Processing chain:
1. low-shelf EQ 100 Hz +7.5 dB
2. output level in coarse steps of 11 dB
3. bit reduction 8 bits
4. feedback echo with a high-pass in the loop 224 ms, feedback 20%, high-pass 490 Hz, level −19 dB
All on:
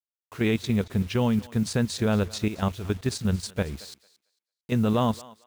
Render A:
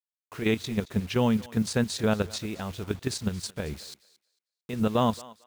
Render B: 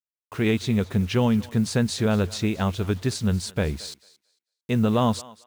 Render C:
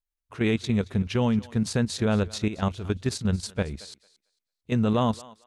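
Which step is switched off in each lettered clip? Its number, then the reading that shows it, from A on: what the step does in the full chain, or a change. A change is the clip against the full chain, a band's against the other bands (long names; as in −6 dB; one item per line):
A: 1, 125 Hz band −4.0 dB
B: 2, change in integrated loudness +2.5 LU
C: 3, distortion level −27 dB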